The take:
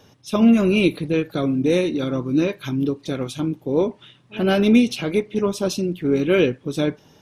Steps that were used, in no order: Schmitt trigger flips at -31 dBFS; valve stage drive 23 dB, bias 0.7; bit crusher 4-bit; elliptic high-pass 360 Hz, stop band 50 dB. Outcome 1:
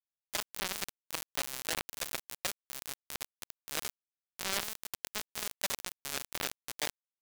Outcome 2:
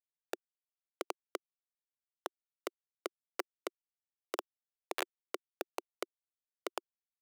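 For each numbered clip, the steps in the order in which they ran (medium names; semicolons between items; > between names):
valve stage > Schmitt trigger > elliptic high-pass > bit crusher; valve stage > Schmitt trigger > bit crusher > elliptic high-pass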